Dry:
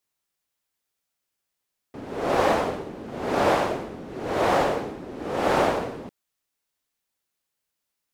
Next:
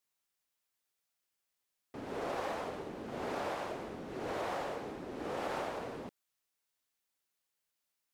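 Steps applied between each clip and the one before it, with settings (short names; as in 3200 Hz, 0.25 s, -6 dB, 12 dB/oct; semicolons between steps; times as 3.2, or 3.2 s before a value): compressor 6:1, threshold -30 dBFS, peak gain reduction 13 dB; low shelf 460 Hz -4.5 dB; gain -3.5 dB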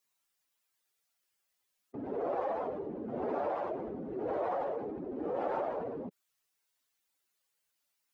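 spectral contrast raised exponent 1.9; gain +4 dB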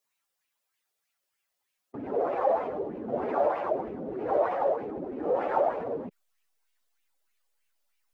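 in parallel at -4 dB: backlash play -50 dBFS; on the sum: LFO bell 3.2 Hz 530–2600 Hz +10 dB; gain -1.5 dB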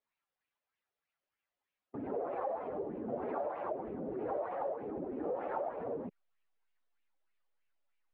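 compressor 4:1, threshold -31 dBFS, peak gain reduction 10 dB; air absorption 340 m; gain -2.5 dB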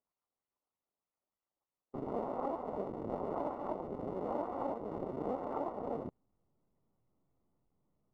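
cycle switcher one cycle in 2, muted; polynomial smoothing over 65 samples; gain +3 dB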